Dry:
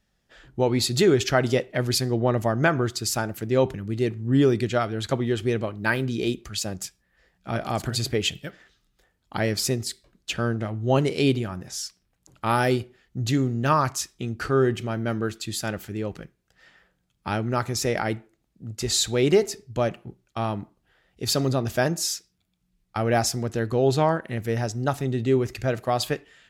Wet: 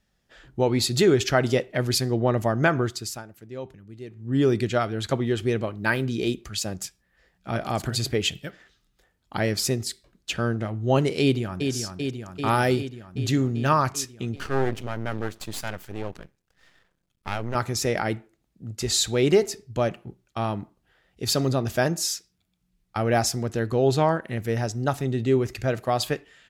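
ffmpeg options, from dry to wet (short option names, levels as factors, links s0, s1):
-filter_complex "[0:a]asplit=2[s0][s1];[s1]afade=t=in:st=11.21:d=0.01,afade=t=out:st=11.71:d=0.01,aecho=0:1:390|780|1170|1560|1950|2340|2730|3120|3510|3900|4290|4680:0.530884|0.398163|0.298622|0.223967|0.167975|0.125981|0.094486|0.0708645|0.0531484|0.0398613|0.029896|0.022422[s2];[s0][s2]amix=inputs=2:normalize=0,asettb=1/sr,asplit=3[s3][s4][s5];[s3]atrim=end=14.364[s6];[s4]atrim=start=14.36:end=17.55,asetpts=PTS-STARTPTS,afade=t=in:d=0.004:c=qsin,afade=t=out:st=3.186:d=0.004:c=qsin,aeval=exprs='max(val(0),0)':c=same[s7];[s5]atrim=start=17.546[s8];[s6][s7]acrossfade=d=0.004:c1=hsin:c2=qsin[s9];[s9][s8]acrossfade=d=0.004:c1=qsin:c2=hsin,asplit=3[s10][s11][s12];[s10]atrim=end=3.24,asetpts=PTS-STARTPTS,afade=t=out:st=2.81:d=0.43:silence=0.177828[s13];[s11]atrim=start=3.24:end=4.1,asetpts=PTS-STARTPTS,volume=0.178[s14];[s12]atrim=start=4.1,asetpts=PTS-STARTPTS,afade=t=in:d=0.43:silence=0.177828[s15];[s13][s14][s15]concat=n=3:v=0:a=1"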